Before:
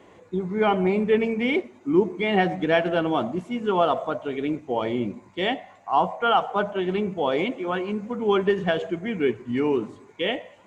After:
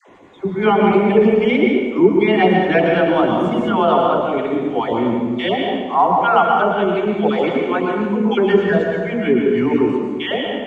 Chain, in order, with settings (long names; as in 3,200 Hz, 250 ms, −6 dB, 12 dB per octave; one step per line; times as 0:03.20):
time-frequency cells dropped at random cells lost 20%
high-shelf EQ 3,900 Hz −6.5 dB
mains-hum notches 50/100/150 Hz
all-pass dispersion lows, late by 91 ms, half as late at 630 Hz
convolution reverb RT60 1.5 s, pre-delay 108 ms, DRR 0.5 dB
0:03.23–0:03.88: multiband upward and downward compressor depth 100%
level +6.5 dB